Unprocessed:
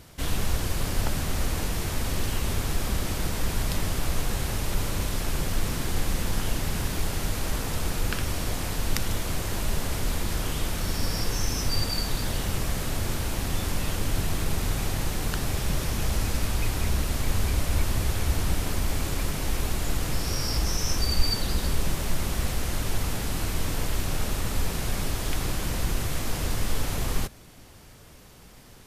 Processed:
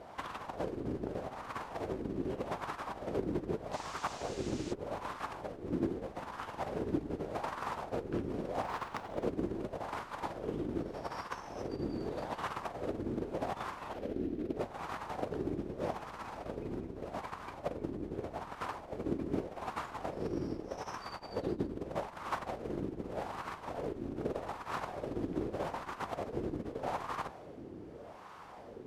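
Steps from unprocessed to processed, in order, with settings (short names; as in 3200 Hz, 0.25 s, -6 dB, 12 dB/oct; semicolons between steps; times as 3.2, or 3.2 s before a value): octaver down 1 oct, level +3 dB; 13.93–14.57 ten-band EQ 125 Hz -8 dB, 250 Hz +4 dB, 1000 Hz -9 dB, 8000 Hz -7 dB; limiter -15.5 dBFS, peak gain reduction 8.5 dB; negative-ratio compressor -29 dBFS, ratio -1; wah 0.82 Hz 320–1100 Hz, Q 2.7; 3.72–4.72 band noise 890–7200 Hz -58 dBFS; 8.63–9.25 decimation joined by straight lines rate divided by 2×; gain +6.5 dB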